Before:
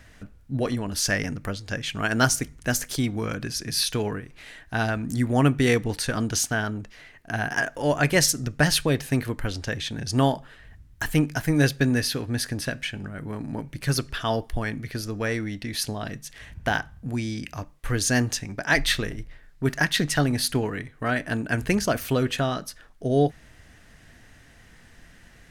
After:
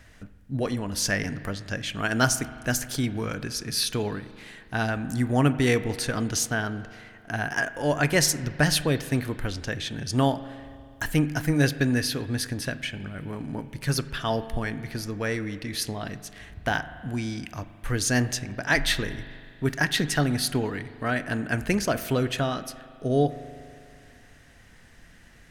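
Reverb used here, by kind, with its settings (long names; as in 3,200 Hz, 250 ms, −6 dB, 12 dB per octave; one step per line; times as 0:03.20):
spring reverb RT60 2.3 s, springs 40 ms, chirp 80 ms, DRR 13.5 dB
level −1.5 dB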